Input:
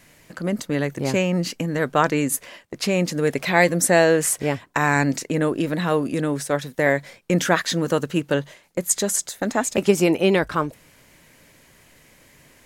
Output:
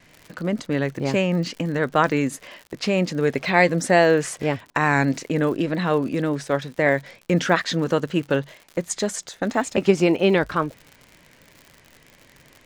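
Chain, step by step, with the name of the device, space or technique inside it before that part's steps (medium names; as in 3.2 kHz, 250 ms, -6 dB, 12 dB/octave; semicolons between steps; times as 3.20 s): lo-fi chain (low-pass 5 kHz 12 dB/octave; wow and flutter; crackle 87 per s -33 dBFS)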